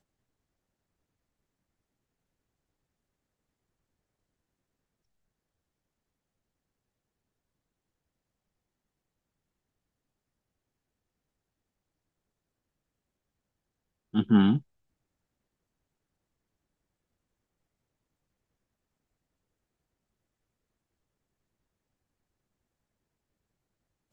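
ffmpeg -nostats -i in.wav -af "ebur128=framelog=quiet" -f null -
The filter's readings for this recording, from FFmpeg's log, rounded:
Integrated loudness:
  I:         -25.1 LUFS
  Threshold: -35.6 LUFS
Loudness range:
  LRA:         9.5 LU
  Threshold: -51.4 LUFS
  LRA low:   -40.3 LUFS
  LRA high:  -30.8 LUFS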